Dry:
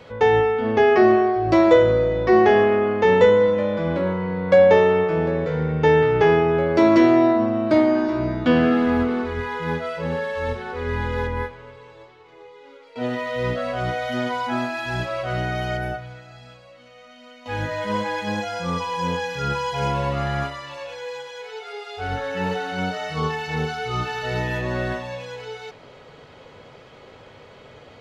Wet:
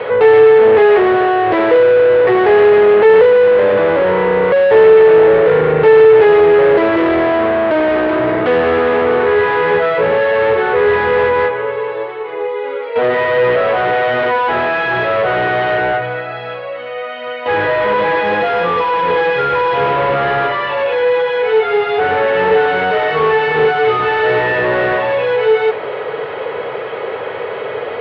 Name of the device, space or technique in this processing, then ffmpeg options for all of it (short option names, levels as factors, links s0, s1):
overdrive pedal into a guitar cabinet: -filter_complex "[0:a]asplit=2[s0][s1];[s1]highpass=f=720:p=1,volume=70.8,asoftclip=type=tanh:threshold=0.75[s2];[s0][s2]amix=inputs=2:normalize=0,lowpass=f=1300:p=1,volume=0.501,highpass=91,equalizer=f=170:t=q:w=4:g=-4,equalizer=f=250:t=q:w=4:g=-9,equalizer=f=440:t=q:w=4:g=9,equalizer=f=1800:t=q:w=4:g=3,lowpass=f=3400:w=0.5412,lowpass=f=3400:w=1.3066,volume=0.631"